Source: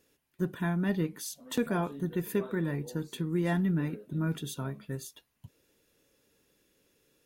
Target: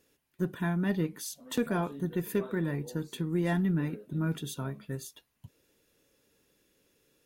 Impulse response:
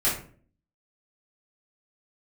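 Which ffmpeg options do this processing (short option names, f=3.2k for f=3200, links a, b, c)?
-af "aeval=exprs='0.133*(cos(1*acos(clip(val(0)/0.133,-1,1)))-cos(1*PI/2))+0.00376*(cos(6*acos(clip(val(0)/0.133,-1,1)))-cos(6*PI/2))+0.00266*(cos(8*acos(clip(val(0)/0.133,-1,1)))-cos(8*PI/2))':c=same"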